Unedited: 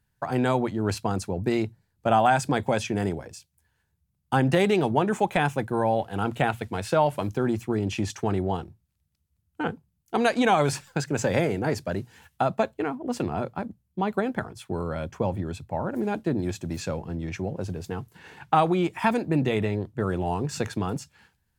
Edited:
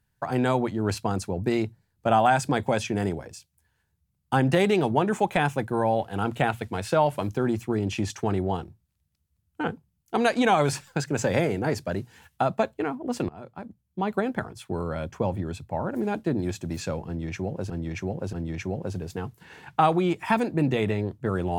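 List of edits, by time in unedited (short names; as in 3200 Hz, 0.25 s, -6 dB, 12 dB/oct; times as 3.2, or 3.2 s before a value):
13.29–14.13 fade in, from -20 dB
17.07–17.7 loop, 3 plays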